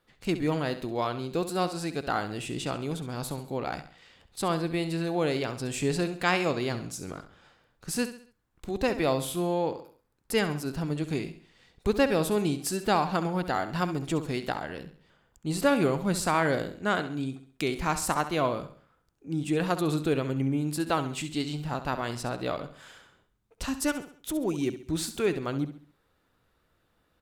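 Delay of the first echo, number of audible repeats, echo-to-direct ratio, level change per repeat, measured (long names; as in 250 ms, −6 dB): 67 ms, 3, −11.0 dB, −7.5 dB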